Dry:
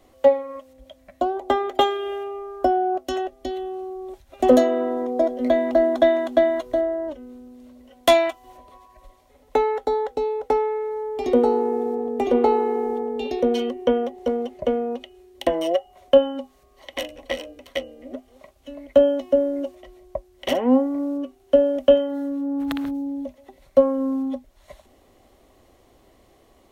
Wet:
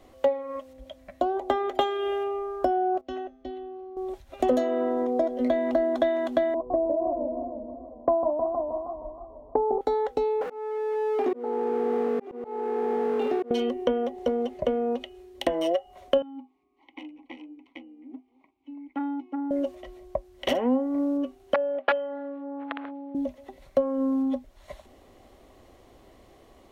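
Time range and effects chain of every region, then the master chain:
0:03.01–0:03.97: high-frequency loss of the air 190 metres + tuned comb filter 260 Hz, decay 0.76 s, mix 70%
0:06.54–0:09.81: Butterworth low-pass 1,100 Hz 72 dB per octave + feedback echo with a swinging delay time 157 ms, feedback 63%, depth 177 cents, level −6.5 dB
0:10.41–0:13.51: converter with a step at zero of −28 dBFS + three-way crossover with the lows and the highs turned down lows −22 dB, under 190 Hz, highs −16 dB, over 2,200 Hz + volume swells 682 ms
0:16.22–0:19.51: formant filter u + saturating transformer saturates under 760 Hz
0:21.54–0:23.15: wrap-around overflow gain 6 dB + flat-topped band-pass 1,300 Hz, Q 0.5 + high-frequency loss of the air 310 metres
whole clip: high-shelf EQ 6,200 Hz −6 dB; downward compressor 3 to 1, threshold −25 dBFS; level +2 dB

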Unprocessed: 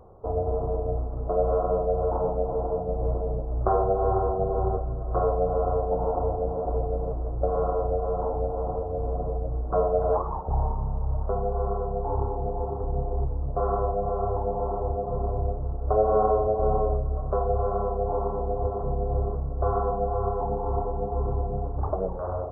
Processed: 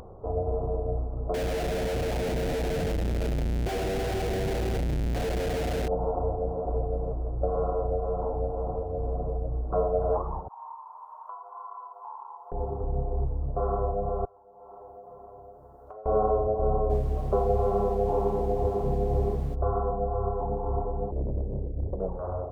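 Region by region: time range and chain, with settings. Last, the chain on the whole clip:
0:01.34–0:05.88: comparator with hysteresis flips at −36.5 dBFS + parametric band 1,100 Hz −12.5 dB 0.59 octaves
0:10.48–0:12.52: high-pass with resonance 1,000 Hz, resonance Q 11 + first difference
0:14.25–0:16.06: first difference + notch filter 1,200 Hz, Q 20 + downward compressor 1.5 to 1, threshold −53 dBFS
0:16.89–0:19.54: hollow resonant body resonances 200/370/800 Hz, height 6 dB, ringing for 20 ms + background noise pink −49 dBFS
0:21.11–0:22.00: lower of the sound and its delayed copy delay 0.4 ms + elliptic low-pass filter 590 Hz + highs frequency-modulated by the lows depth 0.94 ms
whole clip: spectral tilt −2 dB per octave; upward compression, threshold −30 dBFS; low-shelf EQ 110 Hz −7 dB; level −4 dB

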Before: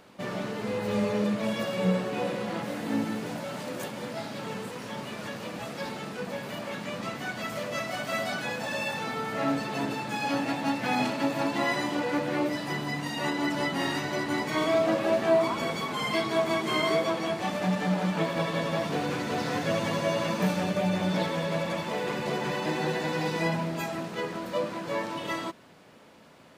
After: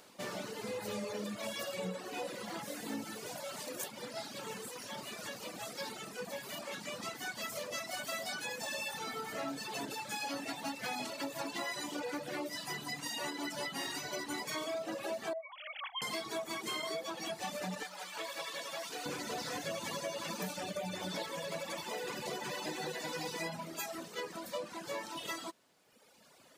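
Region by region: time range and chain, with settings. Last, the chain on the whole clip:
0:15.33–0:16.02: three sine waves on the formant tracks + dynamic equaliser 940 Hz, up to −8 dB, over −36 dBFS, Q 0.98 + linear-phase brick-wall high-pass 470 Hz
0:17.83–0:19.06: high-pass filter 970 Hz 6 dB per octave + saturating transformer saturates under 930 Hz
whole clip: bass and treble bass −7 dB, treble +11 dB; reverb reduction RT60 1.6 s; downward compressor, threshold −31 dBFS; level −4.5 dB

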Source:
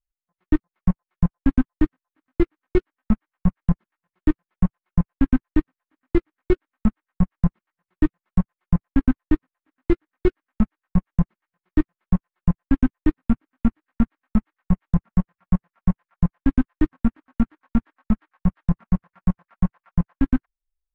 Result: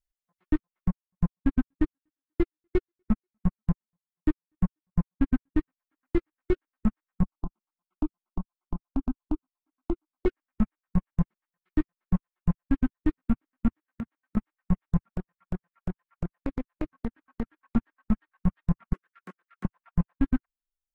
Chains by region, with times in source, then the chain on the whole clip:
0:00.88–0:05.58: feedback echo with a high-pass in the loop 243 ms, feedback 38%, high-pass 350 Hz, level −21 dB + expander for the loud parts 2.5 to 1, over −27 dBFS
0:07.23–0:10.26: low-pass filter 2,400 Hz + downward compressor 12 to 1, threshold −19 dBFS + phaser with its sweep stopped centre 490 Hz, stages 6
0:13.68–0:14.37: high-pass filter 66 Hz + downward compressor 3 to 1, threshold −34 dBFS
0:15.05–0:17.76: downward compressor, threshold −24 dBFS + highs frequency-modulated by the lows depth 0.99 ms
0:18.93–0:19.65: high-pass filter 360 Hz 24 dB per octave + flat-topped bell 740 Hz −12.5 dB 1.2 octaves + downward compressor 2.5 to 1, threshold −37 dBFS
whole clip: brickwall limiter −12.5 dBFS; reverb reduction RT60 1.1 s

